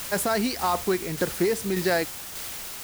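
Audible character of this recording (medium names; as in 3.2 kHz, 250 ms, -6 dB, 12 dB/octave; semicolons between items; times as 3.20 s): a quantiser's noise floor 6-bit, dither triangular; tremolo saw down 1.7 Hz, depth 40%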